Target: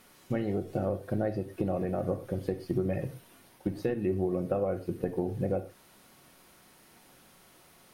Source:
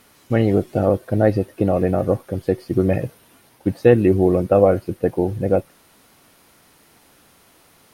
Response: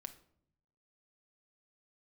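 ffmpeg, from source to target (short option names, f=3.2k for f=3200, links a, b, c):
-filter_complex "[0:a]acompressor=threshold=-22dB:ratio=6[a];[1:a]atrim=start_sample=2205,afade=t=out:st=0.18:d=0.01,atrim=end_sample=8379[b];[a][b]afir=irnorm=-1:irlink=0"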